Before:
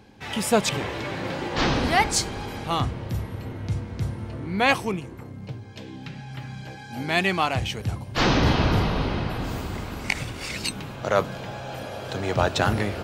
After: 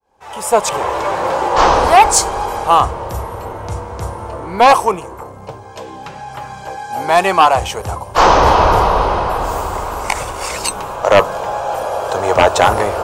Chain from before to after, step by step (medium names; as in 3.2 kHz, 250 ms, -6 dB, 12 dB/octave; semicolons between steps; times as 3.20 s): fade-in on the opening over 1.07 s; graphic EQ 125/250/500/1000/2000/4000/8000 Hz -12/-12/+5/+11/-7/-7/+5 dB; sine folder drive 8 dB, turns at -1 dBFS; trim -1 dB